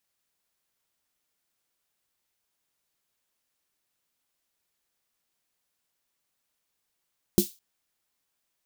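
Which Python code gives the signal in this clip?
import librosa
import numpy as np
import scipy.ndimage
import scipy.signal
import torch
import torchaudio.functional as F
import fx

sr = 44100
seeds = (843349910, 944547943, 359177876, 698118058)

y = fx.drum_snare(sr, seeds[0], length_s=0.21, hz=200.0, second_hz=350.0, noise_db=-9, noise_from_hz=3500.0, decay_s=0.11, noise_decay_s=0.28)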